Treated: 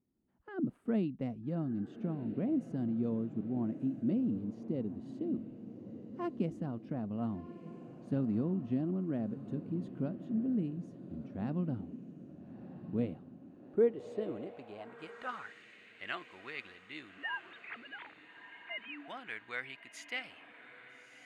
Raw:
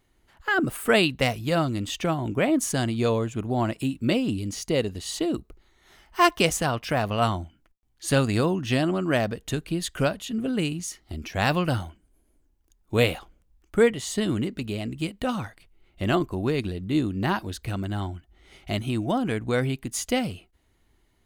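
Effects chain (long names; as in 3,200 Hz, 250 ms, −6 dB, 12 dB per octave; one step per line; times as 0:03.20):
0:17.18–0:19.08: three sine waves on the formant tracks
feedback delay with all-pass diffusion 1,290 ms, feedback 48%, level −12 dB
band-pass filter sweep 220 Hz → 2,000 Hz, 0:13.32–0:15.67
level −4 dB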